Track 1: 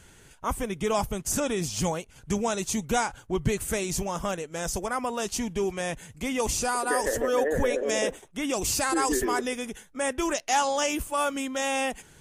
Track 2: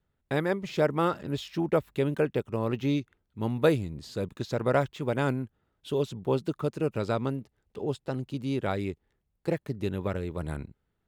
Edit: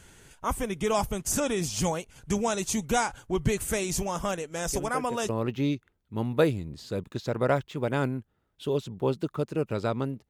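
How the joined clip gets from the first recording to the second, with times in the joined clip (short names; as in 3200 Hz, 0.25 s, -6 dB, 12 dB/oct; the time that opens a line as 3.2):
track 1
4.68 add track 2 from 1.93 s 0.61 s -10 dB
5.29 switch to track 2 from 2.54 s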